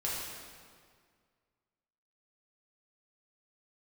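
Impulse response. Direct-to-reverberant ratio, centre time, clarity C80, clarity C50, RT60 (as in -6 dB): -6.5 dB, 109 ms, 1.0 dB, -1.0 dB, 1.9 s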